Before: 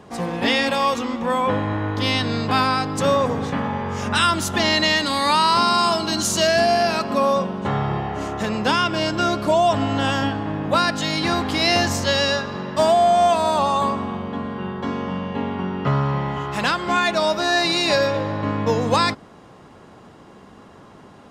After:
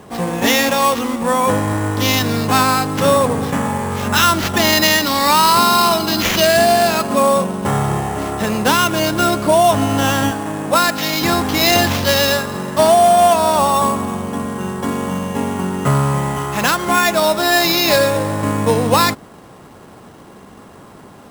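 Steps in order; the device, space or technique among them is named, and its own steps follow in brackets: 10.31–11.22 HPF 250 Hz 6 dB/oct; early companding sampler (sample-rate reducer 9100 Hz, jitter 0%; companded quantiser 6-bit); gain +5 dB

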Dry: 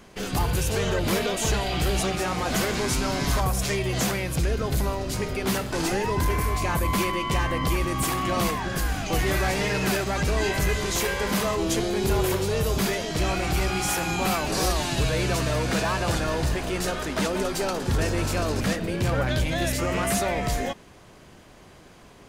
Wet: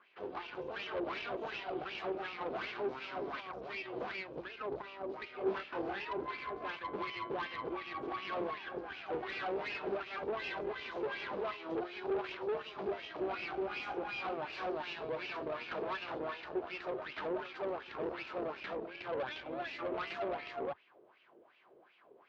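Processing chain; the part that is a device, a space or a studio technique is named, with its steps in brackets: wah-wah guitar rig (wah 2.7 Hz 420–2700 Hz, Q 3.8; tube stage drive 35 dB, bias 0.8; speaker cabinet 76–4200 Hz, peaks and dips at 100 Hz -10 dB, 180 Hz -5 dB, 360 Hz +6 dB, 1900 Hz -4 dB); 5.38–6.05 doubler 26 ms -4 dB; gain +1.5 dB

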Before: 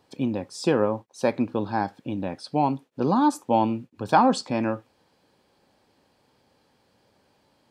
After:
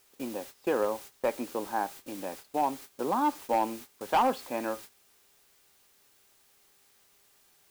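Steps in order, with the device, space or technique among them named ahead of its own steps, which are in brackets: aircraft radio (BPF 390–2400 Hz; hard clip -15.5 dBFS, distortion -15 dB; buzz 400 Hz, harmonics 27, -58 dBFS -3 dB/oct; white noise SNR 15 dB; gate -40 dBFS, range -16 dB); gain -3.5 dB

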